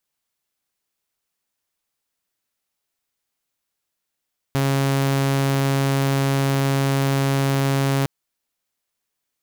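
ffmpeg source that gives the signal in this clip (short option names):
-f lavfi -i "aevalsrc='0.178*(2*mod(137*t,1)-1)':d=3.51:s=44100"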